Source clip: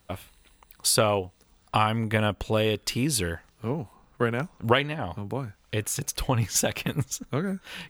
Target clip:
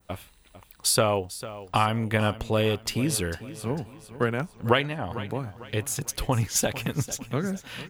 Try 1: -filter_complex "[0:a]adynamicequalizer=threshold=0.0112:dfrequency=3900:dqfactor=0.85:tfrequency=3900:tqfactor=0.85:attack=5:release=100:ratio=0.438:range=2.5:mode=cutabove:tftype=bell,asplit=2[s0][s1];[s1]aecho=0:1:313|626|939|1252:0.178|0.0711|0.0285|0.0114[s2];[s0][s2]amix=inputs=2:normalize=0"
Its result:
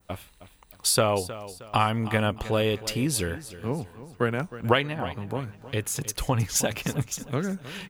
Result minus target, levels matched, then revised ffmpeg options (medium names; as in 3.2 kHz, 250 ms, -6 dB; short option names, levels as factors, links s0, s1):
echo 136 ms early
-filter_complex "[0:a]adynamicequalizer=threshold=0.0112:dfrequency=3900:dqfactor=0.85:tfrequency=3900:tqfactor=0.85:attack=5:release=100:ratio=0.438:range=2.5:mode=cutabove:tftype=bell,asplit=2[s0][s1];[s1]aecho=0:1:449|898|1347|1796:0.178|0.0711|0.0285|0.0114[s2];[s0][s2]amix=inputs=2:normalize=0"